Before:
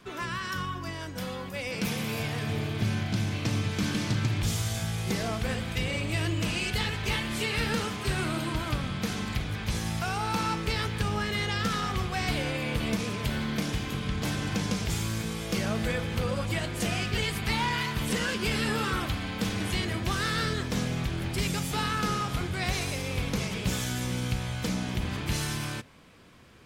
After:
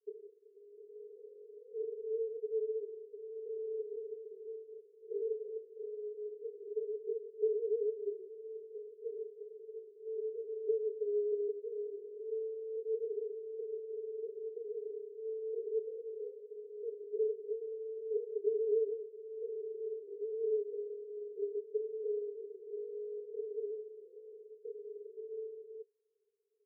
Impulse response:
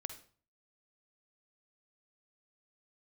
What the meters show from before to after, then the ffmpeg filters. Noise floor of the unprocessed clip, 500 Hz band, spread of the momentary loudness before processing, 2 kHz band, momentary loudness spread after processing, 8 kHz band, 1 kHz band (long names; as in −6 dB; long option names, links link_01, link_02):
−37 dBFS, +1.5 dB, 4 LU, below −40 dB, 14 LU, below −40 dB, below −40 dB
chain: -af "afwtdn=0.02,asuperpass=centerf=430:order=8:qfactor=7.6,volume=6.5dB"